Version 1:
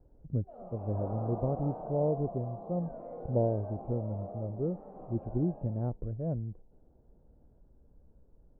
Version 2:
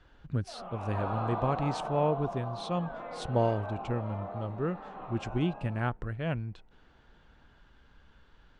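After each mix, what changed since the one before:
background: add Bessel low-pass 940 Hz, order 2; master: remove Chebyshev low-pass 580 Hz, order 3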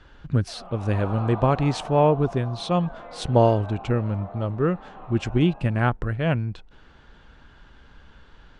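speech +9.5 dB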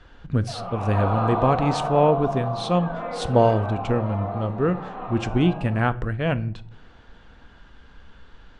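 background +7.5 dB; reverb: on, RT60 0.45 s

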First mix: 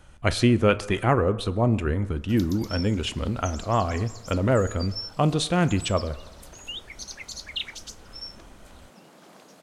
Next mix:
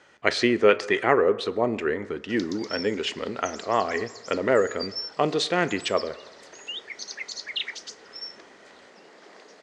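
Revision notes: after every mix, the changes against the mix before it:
master: add cabinet simulation 310–7000 Hz, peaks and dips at 420 Hz +8 dB, 1.9 kHz +10 dB, 4.7 kHz +4 dB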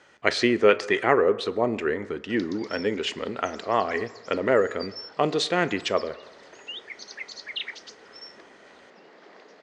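background: add distance through air 130 m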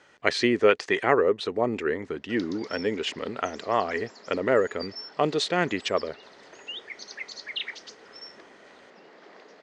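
reverb: off

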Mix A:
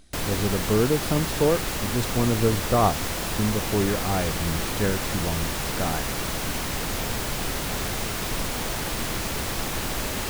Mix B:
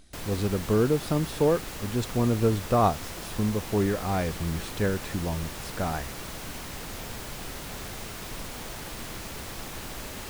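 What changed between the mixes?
speech: send -6.0 dB; background -9.5 dB

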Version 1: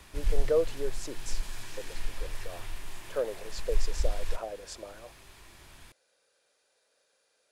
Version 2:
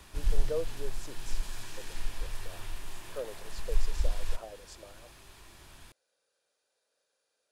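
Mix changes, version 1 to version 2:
speech -7.5 dB; master: add peaking EQ 2.1 kHz -3.5 dB 0.42 oct

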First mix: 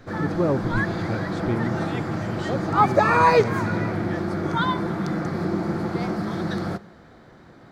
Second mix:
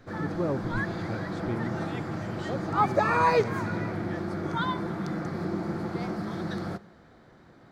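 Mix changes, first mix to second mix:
speech -7.0 dB; background -6.0 dB

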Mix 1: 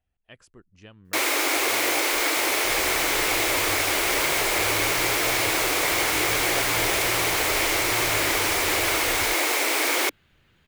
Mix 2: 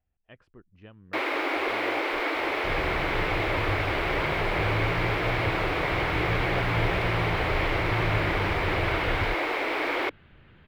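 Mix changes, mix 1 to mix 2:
second sound +9.5 dB; master: add distance through air 410 m

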